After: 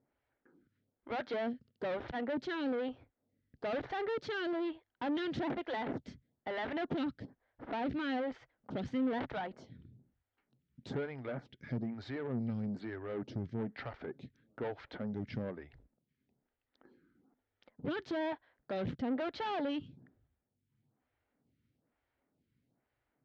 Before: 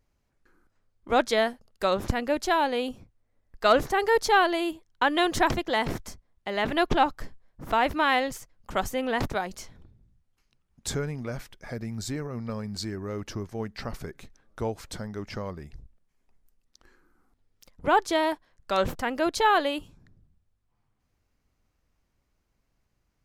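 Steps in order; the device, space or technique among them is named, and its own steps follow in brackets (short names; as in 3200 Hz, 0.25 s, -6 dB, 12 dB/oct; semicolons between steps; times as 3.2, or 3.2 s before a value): vibe pedal into a guitar amplifier (photocell phaser 1.1 Hz; tube stage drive 35 dB, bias 0.35; speaker cabinet 100–3400 Hz, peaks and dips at 130 Hz +6 dB, 260 Hz +6 dB, 1100 Hz -7 dB, 2600 Hz -5 dB); gain +1.5 dB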